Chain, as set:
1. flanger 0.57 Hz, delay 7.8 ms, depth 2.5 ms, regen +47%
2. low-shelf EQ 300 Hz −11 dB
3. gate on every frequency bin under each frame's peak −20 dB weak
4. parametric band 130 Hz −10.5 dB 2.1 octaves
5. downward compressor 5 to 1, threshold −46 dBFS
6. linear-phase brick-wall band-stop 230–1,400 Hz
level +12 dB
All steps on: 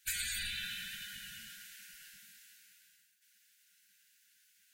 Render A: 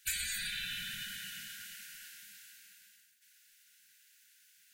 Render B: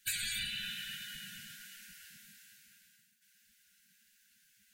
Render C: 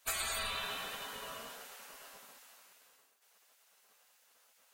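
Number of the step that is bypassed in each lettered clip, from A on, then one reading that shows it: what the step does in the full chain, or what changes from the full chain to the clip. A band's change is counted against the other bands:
1, change in momentary loudness spread −1 LU
2, 250 Hz band +4.0 dB
6, 1 kHz band +16.5 dB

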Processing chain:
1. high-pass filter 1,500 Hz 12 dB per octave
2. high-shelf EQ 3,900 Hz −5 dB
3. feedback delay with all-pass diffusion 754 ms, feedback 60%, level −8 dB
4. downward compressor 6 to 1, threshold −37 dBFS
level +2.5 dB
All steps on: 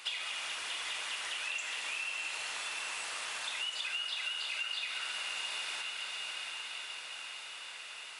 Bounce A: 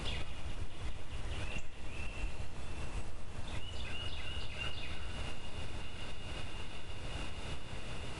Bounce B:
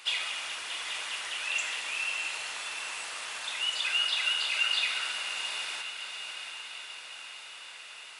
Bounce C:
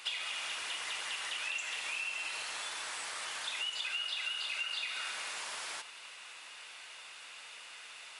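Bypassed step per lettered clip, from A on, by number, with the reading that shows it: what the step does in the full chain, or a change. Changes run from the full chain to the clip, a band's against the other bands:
1, 500 Hz band +16.0 dB
4, average gain reduction 3.0 dB
3, change in momentary loudness spread +6 LU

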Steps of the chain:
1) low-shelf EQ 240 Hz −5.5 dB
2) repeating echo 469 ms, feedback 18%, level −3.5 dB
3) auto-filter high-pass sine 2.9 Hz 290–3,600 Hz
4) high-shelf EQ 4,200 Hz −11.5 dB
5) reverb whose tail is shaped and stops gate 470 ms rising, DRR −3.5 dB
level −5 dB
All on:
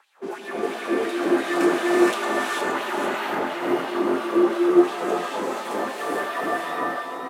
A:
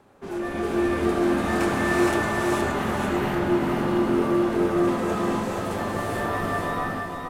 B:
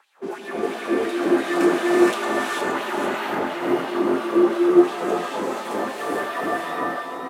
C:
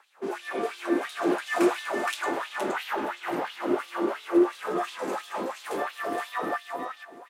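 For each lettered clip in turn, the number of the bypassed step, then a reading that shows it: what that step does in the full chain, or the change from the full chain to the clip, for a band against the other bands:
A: 3, 125 Hz band +17.0 dB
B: 1, 125 Hz band +3.5 dB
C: 5, change in crest factor −2.0 dB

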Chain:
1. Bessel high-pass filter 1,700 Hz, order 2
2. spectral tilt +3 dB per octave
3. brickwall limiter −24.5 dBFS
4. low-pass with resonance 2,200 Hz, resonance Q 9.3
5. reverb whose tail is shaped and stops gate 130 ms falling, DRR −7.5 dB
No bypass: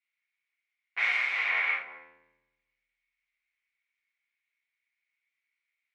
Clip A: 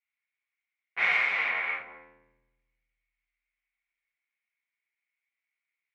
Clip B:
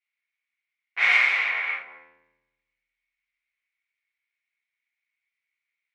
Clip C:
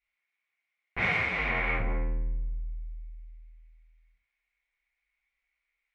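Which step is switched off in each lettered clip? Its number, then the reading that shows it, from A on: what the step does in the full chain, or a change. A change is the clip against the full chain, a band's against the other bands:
2, 500 Hz band +4.5 dB
3, average gain reduction 3.5 dB
1, 500 Hz band +14.5 dB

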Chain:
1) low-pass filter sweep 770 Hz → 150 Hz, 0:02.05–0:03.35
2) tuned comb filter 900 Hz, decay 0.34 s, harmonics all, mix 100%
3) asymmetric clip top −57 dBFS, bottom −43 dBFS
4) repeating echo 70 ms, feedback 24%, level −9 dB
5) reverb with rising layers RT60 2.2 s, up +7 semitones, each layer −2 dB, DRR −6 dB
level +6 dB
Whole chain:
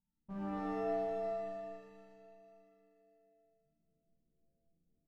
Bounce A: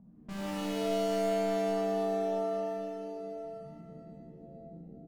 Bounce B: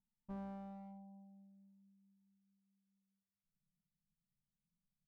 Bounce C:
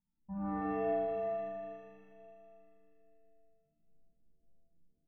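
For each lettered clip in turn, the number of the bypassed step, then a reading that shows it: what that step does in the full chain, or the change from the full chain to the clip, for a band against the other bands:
2, 1 kHz band −2.0 dB
5, change in integrated loudness −12.0 LU
3, distortion level −10 dB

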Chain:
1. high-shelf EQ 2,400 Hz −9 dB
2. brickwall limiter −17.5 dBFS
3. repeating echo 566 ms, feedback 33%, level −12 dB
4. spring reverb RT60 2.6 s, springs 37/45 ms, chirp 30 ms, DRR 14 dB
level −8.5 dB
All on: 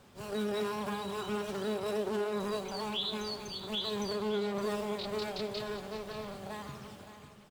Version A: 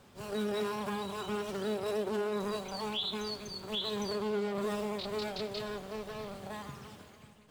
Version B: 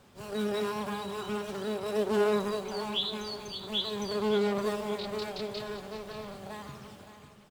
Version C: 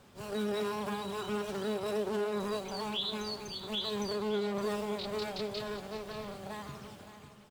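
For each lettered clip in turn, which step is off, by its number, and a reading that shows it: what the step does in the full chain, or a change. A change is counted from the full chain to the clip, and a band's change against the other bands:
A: 3, echo-to-direct ratio −9.5 dB to −14.0 dB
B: 2, change in crest factor +4.0 dB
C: 4, echo-to-direct ratio −9.5 dB to −11.5 dB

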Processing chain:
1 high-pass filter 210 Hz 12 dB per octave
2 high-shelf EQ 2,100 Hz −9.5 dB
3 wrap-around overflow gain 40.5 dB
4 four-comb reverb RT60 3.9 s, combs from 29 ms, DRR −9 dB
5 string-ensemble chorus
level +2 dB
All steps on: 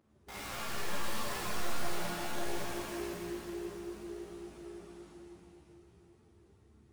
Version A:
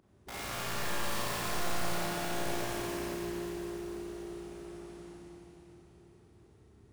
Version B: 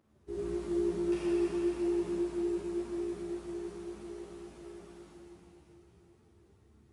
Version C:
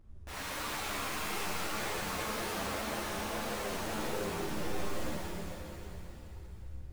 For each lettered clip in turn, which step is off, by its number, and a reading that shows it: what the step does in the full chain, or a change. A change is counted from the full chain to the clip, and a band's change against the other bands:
5, 125 Hz band +2.0 dB
3, 250 Hz band +20.0 dB
1, 250 Hz band −2.5 dB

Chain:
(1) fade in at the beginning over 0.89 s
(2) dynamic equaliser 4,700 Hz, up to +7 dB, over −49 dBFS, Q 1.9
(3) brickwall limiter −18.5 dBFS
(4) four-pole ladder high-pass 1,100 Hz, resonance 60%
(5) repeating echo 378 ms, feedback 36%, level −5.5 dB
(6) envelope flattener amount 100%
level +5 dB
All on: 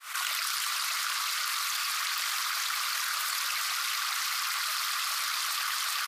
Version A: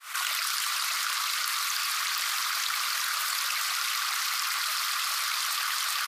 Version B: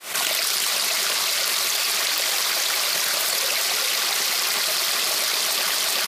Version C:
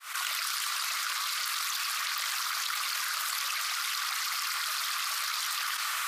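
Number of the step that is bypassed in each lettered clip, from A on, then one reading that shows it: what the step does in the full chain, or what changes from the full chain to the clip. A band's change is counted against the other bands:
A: 3, average gain reduction 2.0 dB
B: 4, 500 Hz band +16.5 dB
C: 5, change in integrated loudness −1.0 LU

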